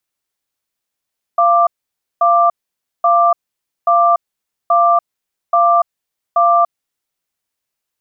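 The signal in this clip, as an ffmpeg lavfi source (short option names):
-f lavfi -i "aevalsrc='0.282*(sin(2*PI*690*t)+sin(2*PI*1180*t))*clip(min(mod(t,0.83),0.29-mod(t,0.83))/0.005,0,1)':d=5.48:s=44100"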